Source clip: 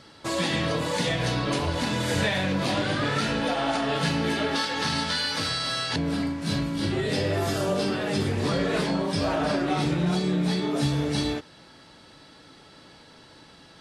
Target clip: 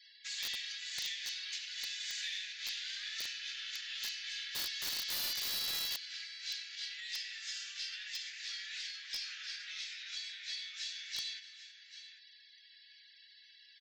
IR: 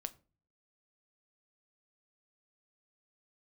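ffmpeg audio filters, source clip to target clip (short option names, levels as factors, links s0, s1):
-filter_complex "[0:a]asuperpass=centerf=3600:order=12:qfactor=0.66,afftfilt=real='re*gte(hypot(re,im),0.00224)':imag='im*gte(hypot(re,im),0.00224)':win_size=1024:overlap=0.75,aecho=1:1:94|295|792:0.188|0.112|0.178,aeval=exprs='0.158*(cos(1*acos(clip(val(0)/0.158,-1,1)))-cos(1*PI/2))+0.00251*(cos(6*acos(clip(val(0)/0.158,-1,1)))-cos(6*PI/2))':c=same,acrossover=split=3400[s0][s1];[s0]acompressor=threshold=0.00631:ratio=6[s2];[s1]aeval=exprs='(mod(22.4*val(0)+1,2)-1)/22.4':c=same[s3];[s2][s3]amix=inputs=2:normalize=0,volume=0.631"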